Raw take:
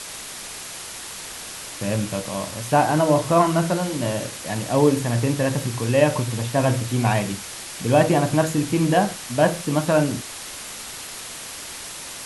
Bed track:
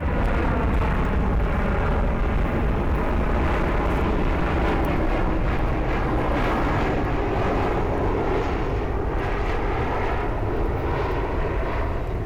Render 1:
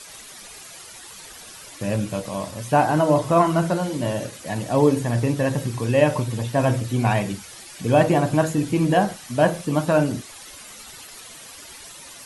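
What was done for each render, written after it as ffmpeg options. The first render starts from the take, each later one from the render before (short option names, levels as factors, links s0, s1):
-af "afftdn=nr=11:nf=-36"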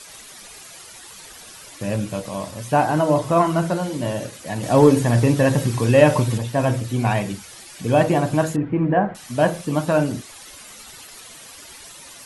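-filter_complex "[0:a]asettb=1/sr,asplit=3[s0][s1][s2];[s0]atrim=end=4.634[s3];[s1]atrim=start=4.63:end=6.38,asetpts=PTS-STARTPTS,afade=t=in:d=0.004:c=qsin,afade=t=out:st=1.746:d=0.004:c=qsin,acontrast=32[s4];[s2]atrim=start=6.376[s5];[s3][s4]acrossfade=d=0.004:c1=hsin:c2=qsin[s6];[s6][s5]acrossfade=d=0.004:c1=qsin:c2=hsin,asettb=1/sr,asplit=3[s7][s8][s9];[s7]atrim=end=8.564[s10];[s8]atrim=start=8.56:end=9.15,asetpts=PTS-STARTPTS,afade=t=in:d=0.004:c=qsin,afade=t=out:st=0.586:d=0.004:c=qsin,lowpass=f=2000:w=0.5412,lowpass=f=2000:w=1.3066[s11];[s9]atrim=start=9.146[s12];[s10][s11]acrossfade=d=0.004:c1=hsin:c2=qsin[s13];[s13][s12]acrossfade=d=0.004:c1=qsin:c2=hsin"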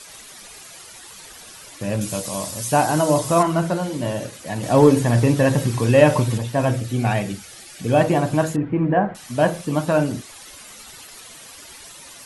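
-filter_complex "[0:a]asettb=1/sr,asplit=3[s0][s1][s2];[s0]atrim=end=2.014[s3];[s1]atrim=start=2.01:end=3.43,asetpts=PTS-STARTPTS,afade=t=in:d=0.004:c=qsin,afade=t=out:st=1.416:d=0.004:c=qsin,bass=f=250:g=0,treble=f=4000:g=12[s4];[s2]atrim=start=3.426[s5];[s3][s4]acrossfade=d=0.004:c1=hsin:c2=qsin[s6];[s6][s5]acrossfade=d=0.004:c1=qsin:c2=hsin,asettb=1/sr,asplit=3[s7][s8][s9];[s7]atrim=end=6.704[s10];[s8]atrim=start=6.7:end=7.96,asetpts=PTS-STARTPTS,afade=t=in:d=0.004:c=qsin,afade=t=out:st=1.256:d=0.004:c=qsin,bandreject=f=1000:w=5.5[s11];[s9]atrim=start=7.956[s12];[s10][s11]acrossfade=d=0.004:c1=hsin:c2=qsin[s13];[s13][s12]acrossfade=d=0.004:c1=qsin:c2=hsin"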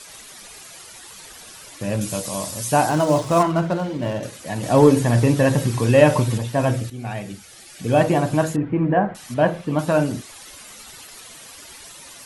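-filter_complex "[0:a]asettb=1/sr,asplit=3[s0][s1][s2];[s0]atrim=end=2.894[s3];[s1]atrim=start=2.89:end=4.23,asetpts=PTS-STARTPTS,afade=t=in:d=0.004:c=qsin,afade=t=out:st=1.336:d=0.004:c=qsin,adynamicsmooth=sensitivity=6:basefreq=2400[s4];[s2]atrim=start=4.226[s5];[s3][s4]acrossfade=d=0.004:c1=hsin:c2=qsin[s6];[s6][s5]acrossfade=d=0.004:c1=qsin:c2=hsin,asettb=1/sr,asplit=3[s7][s8][s9];[s7]atrim=end=9.344[s10];[s8]atrim=start=9.34:end=9.79,asetpts=PTS-STARTPTS,afade=t=in:d=0.004:c=qsin,afade=t=out:st=0.446:d=0.004:c=qsin,acrossover=split=3600[s11][s12];[s12]acompressor=threshold=0.002:ratio=4:attack=1:release=60[s13];[s11][s13]amix=inputs=2:normalize=0[s14];[s9]atrim=start=9.786[s15];[s10][s14]acrossfade=d=0.004:c1=hsin:c2=qsin[s16];[s16][s15]acrossfade=d=0.004:c1=qsin:c2=hsin,asplit=2[s17][s18];[s17]atrim=end=6.9,asetpts=PTS-STARTPTS,afade=t=out:st=6.896:d=0.004:c=hsin:silence=0.223872[s19];[s18]atrim=start=6.9,asetpts=PTS-STARTPTS,afade=t=in:d=1.09:silence=0.223872[s20];[s19][s20]concat=n=2:v=0:a=1"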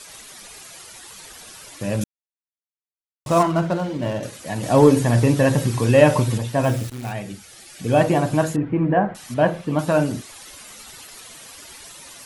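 -filter_complex "[0:a]asplit=3[s0][s1][s2];[s0]afade=t=out:st=6.63:d=0.02[s3];[s1]acrusher=bits=7:dc=4:mix=0:aa=0.000001,afade=t=in:st=6.63:d=0.02,afade=t=out:st=7.11:d=0.02[s4];[s2]afade=t=in:st=7.11:d=0.02[s5];[s3][s4][s5]amix=inputs=3:normalize=0,asplit=3[s6][s7][s8];[s6]atrim=end=2.04,asetpts=PTS-STARTPTS,afade=t=out:st=2.036:d=0.004:c=hsin[s9];[s7]atrim=start=2.04:end=3.26,asetpts=PTS-STARTPTS,volume=0[s10];[s8]atrim=start=3.26,asetpts=PTS-STARTPTS,afade=t=in:d=0.004:c=hsin[s11];[s9][s10][s11]concat=n=3:v=0:a=1"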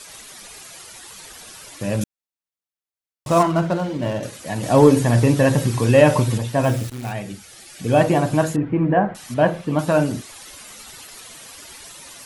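-af "volume=1.12,alimiter=limit=0.794:level=0:latency=1"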